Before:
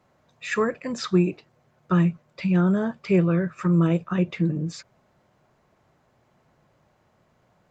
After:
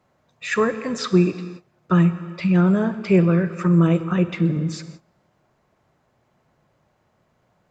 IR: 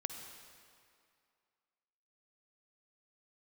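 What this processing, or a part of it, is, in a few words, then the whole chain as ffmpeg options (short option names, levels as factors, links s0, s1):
keyed gated reverb: -filter_complex "[0:a]asplit=3[s0][s1][s2];[1:a]atrim=start_sample=2205[s3];[s1][s3]afir=irnorm=-1:irlink=0[s4];[s2]apad=whole_len=339923[s5];[s4][s5]sidechaingate=range=0.0631:threshold=0.00141:ratio=16:detection=peak,volume=0.944[s6];[s0][s6]amix=inputs=2:normalize=0,volume=0.841"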